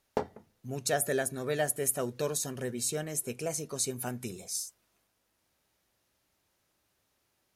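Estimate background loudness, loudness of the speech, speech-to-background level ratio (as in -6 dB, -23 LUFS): -38.5 LUFS, -32.5 LUFS, 6.0 dB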